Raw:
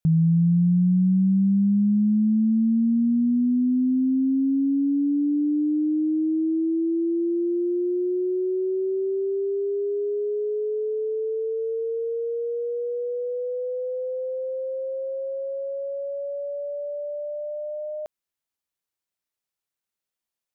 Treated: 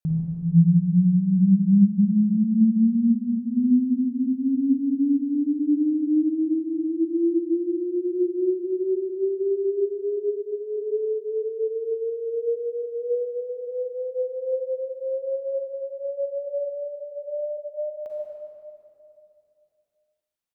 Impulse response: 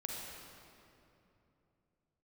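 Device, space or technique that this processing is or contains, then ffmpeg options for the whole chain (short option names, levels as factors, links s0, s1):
cave: -filter_complex "[0:a]aecho=1:1:152:0.178[s0];[1:a]atrim=start_sample=2205[s1];[s0][s1]afir=irnorm=-1:irlink=0,volume=0.841"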